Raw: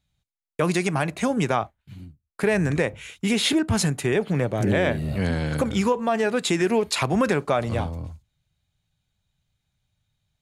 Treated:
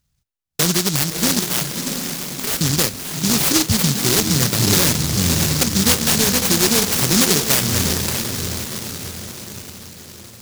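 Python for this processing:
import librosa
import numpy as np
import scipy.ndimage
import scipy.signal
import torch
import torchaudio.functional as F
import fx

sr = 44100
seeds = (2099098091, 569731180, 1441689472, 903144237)

p1 = fx.highpass(x, sr, hz=900.0, slope=12, at=(1.39, 2.61))
p2 = p1 + fx.echo_diffused(p1, sr, ms=621, feedback_pct=53, wet_db=-5.5, dry=0)
p3 = fx.noise_mod_delay(p2, sr, seeds[0], noise_hz=5300.0, depth_ms=0.47)
y = p3 * 10.0 ** (4.5 / 20.0)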